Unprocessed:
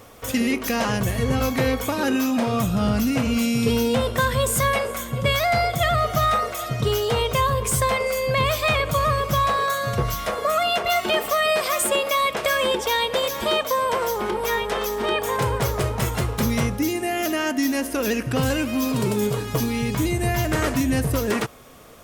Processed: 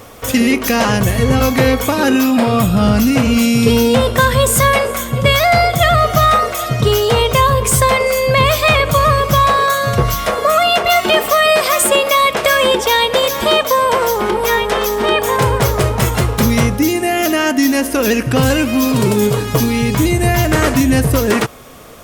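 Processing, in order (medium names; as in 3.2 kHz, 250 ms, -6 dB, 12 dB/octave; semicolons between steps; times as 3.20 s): 2.23–2.83 s: band-stop 6.1 kHz, Q 5.5; trim +9 dB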